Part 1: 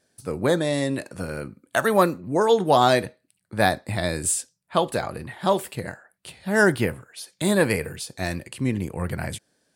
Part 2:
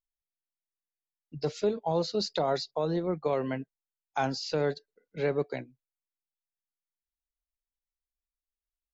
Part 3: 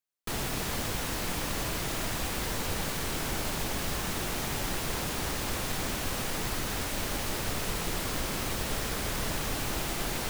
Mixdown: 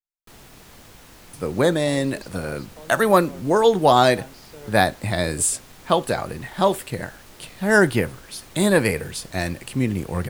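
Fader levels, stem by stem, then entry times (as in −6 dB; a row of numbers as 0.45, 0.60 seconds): +2.5, −14.0, −14.0 decibels; 1.15, 0.00, 0.00 seconds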